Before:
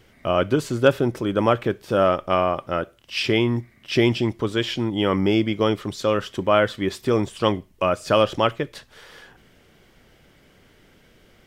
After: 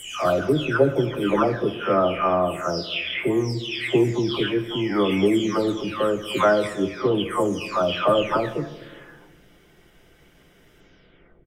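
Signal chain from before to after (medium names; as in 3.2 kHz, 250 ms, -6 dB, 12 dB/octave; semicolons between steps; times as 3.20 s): delay that grows with frequency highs early, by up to 659 ms; band-stop 4.4 kHz, Q 8.3; echo from a far wall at 43 m, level -22 dB; on a send at -9.5 dB: reverberation RT60 1.3 s, pre-delay 3 ms; on the sum: trim +1 dB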